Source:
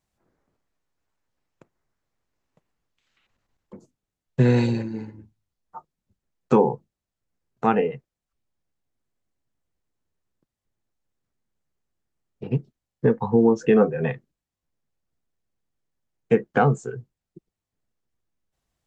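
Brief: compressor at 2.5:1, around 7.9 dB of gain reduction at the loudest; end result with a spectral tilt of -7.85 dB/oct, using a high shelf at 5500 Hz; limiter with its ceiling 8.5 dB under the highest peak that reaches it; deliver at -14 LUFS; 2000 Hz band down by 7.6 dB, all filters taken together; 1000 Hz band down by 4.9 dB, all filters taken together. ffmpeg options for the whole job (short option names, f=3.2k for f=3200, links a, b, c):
-af "equalizer=f=1k:t=o:g=-5,equalizer=f=2k:t=o:g=-8,highshelf=f=5.5k:g=-5,acompressor=threshold=-25dB:ratio=2.5,volume=18.5dB,alimiter=limit=-1.5dB:level=0:latency=1"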